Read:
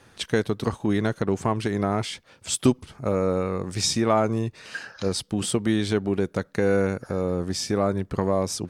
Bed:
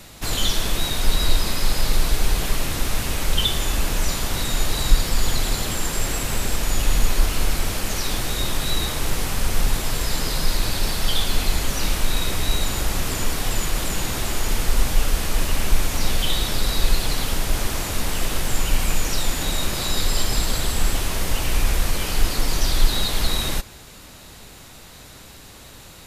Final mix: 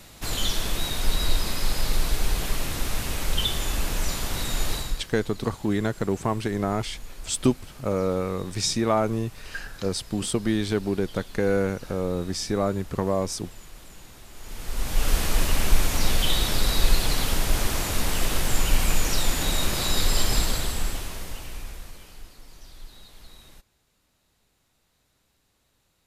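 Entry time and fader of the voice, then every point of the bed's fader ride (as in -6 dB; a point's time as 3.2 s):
4.80 s, -1.5 dB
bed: 4.74 s -4.5 dB
5.11 s -22 dB
14.3 s -22 dB
15.11 s -1 dB
20.38 s -1 dB
22.37 s -26.5 dB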